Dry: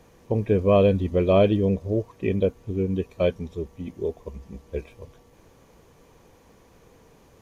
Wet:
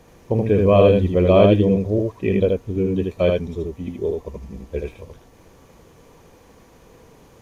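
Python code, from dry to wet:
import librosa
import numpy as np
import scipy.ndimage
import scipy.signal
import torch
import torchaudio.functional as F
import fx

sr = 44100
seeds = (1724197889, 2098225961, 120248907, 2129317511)

y = x + 10.0 ** (-3.0 / 20.0) * np.pad(x, (int(78 * sr / 1000.0), 0))[:len(x)]
y = y * librosa.db_to_amplitude(3.5)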